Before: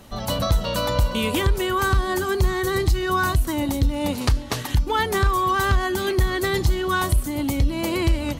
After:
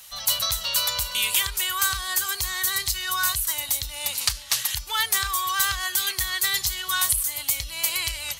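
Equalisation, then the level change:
spectral tilt +3 dB per octave
guitar amp tone stack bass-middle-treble 10-0-10
+2.0 dB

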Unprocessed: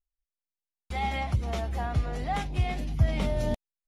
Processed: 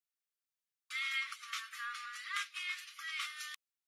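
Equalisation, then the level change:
linear-phase brick-wall high-pass 1,100 Hz
+1.0 dB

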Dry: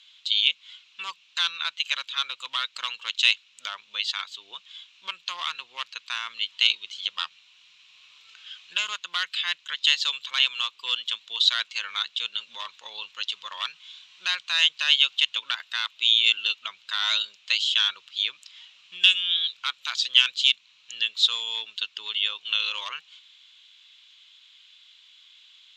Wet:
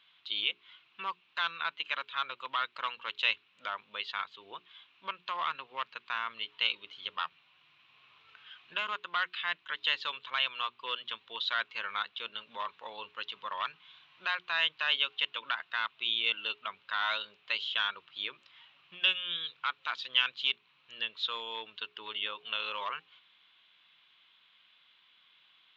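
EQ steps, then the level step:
head-to-tape spacing loss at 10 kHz 44 dB
high-shelf EQ 2,200 Hz −7.5 dB
mains-hum notches 60/120/180/240/300/360/420 Hz
+8.5 dB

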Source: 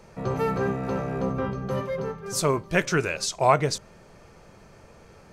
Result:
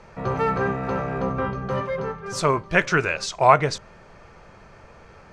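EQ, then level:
low-pass filter 7,600 Hz 12 dB per octave
low-shelf EQ 130 Hz +8.5 dB
parametric band 1,400 Hz +10 dB 2.9 octaves
−3.5 dB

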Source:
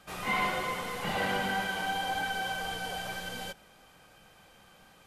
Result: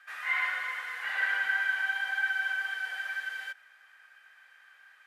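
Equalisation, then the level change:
high-pass with resonance 1,700 Hz, resonance Q 6
high-shelf EQ 2,200 Hz −12 dB
0.0 dB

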